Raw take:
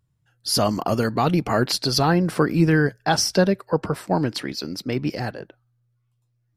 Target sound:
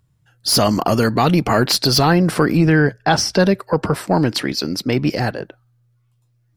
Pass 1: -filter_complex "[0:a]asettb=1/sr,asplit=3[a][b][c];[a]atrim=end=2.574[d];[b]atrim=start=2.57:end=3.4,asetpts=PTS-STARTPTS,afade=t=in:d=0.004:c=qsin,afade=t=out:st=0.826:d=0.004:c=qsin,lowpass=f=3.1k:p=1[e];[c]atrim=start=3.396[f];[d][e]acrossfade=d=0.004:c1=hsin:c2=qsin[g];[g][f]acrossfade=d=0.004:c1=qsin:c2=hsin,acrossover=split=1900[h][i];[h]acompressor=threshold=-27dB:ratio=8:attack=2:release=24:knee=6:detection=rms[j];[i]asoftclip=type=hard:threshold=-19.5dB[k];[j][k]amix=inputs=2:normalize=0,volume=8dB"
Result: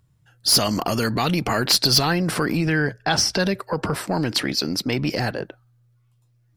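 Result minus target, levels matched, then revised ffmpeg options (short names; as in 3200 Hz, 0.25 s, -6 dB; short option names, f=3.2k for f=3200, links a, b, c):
compressor: peak gain reduction +8.5 dB
-filter_complex "[0:a]asettb=1/sr,asplit=3[a][b][c];[a]atrim=end=2.574[d];[b]atrim=start=2.57:end=3.4,asetpts=PTS-STARTPTS,afade=t=in:d=0.004:c=qsin,afade=t=out:st=0.826:d=0.004:c=qsin,lowpass=f=3.1k:p=1[e];[c]atrim=start=3.396[f];[d][e]acrossfade=d=0.004:c1=hsin:c2=qsin[g];[g][f]acrossfade=d=0.004:c1=qsin:c2=hsin,acrossover=split=1900[h][i];[h]acompressor=threshold=-17dB:ratio=8:attack=2:release=24:knee=6:detection=rms[j];[i]asoftclip=type=hard:threshold=-19.5dB[k];[j][k]amix=inputs=2:normalize=0,volume=8dB"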